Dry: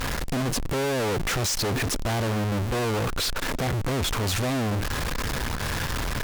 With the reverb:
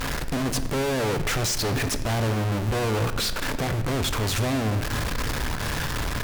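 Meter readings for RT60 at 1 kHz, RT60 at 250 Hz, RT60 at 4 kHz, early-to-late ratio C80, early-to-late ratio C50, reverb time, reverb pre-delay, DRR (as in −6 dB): 1.3 s, 2.3 s, 1.1 s, 13.0 dB, 12.0 dB, 1.4 s, 3 ms, 9.5 dB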